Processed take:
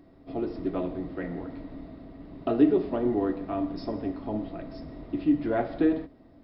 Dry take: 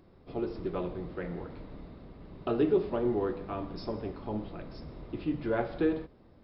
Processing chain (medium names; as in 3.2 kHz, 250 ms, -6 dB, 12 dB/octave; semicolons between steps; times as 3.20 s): small resonant body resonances 280/660/1900 Hz, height 14 dB, ringing for 85 ms